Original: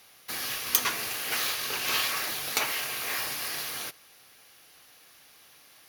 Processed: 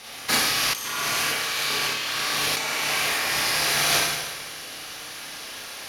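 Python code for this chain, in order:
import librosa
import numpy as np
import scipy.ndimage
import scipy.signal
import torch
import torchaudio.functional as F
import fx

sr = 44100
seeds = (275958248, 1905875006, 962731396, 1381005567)

y = fx.rev_schroeder(x, sr, rt60_s=1.3, comb_ms=27, drr_db=-6.0)
y = fx.over_compress(y, sr, threshold_db=-31.0, ratio=-1.0)
y = scipy.signal.sosfilt(scipy.signal.butter(2, 9600.0, 'lowpass', fs=sr, output='sos'), y)
y = F.gain(torch.from_numpy(y), 7.5).numpy()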